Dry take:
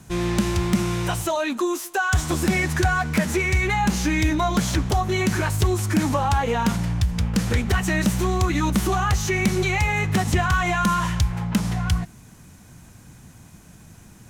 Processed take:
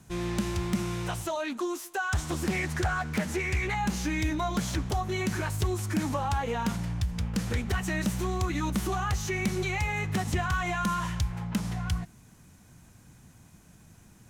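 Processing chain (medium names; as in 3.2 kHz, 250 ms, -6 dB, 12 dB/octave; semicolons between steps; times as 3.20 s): 1.04–3.75 s: loudspeaker Doppler distortion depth 0.37 ms; trim -8 dB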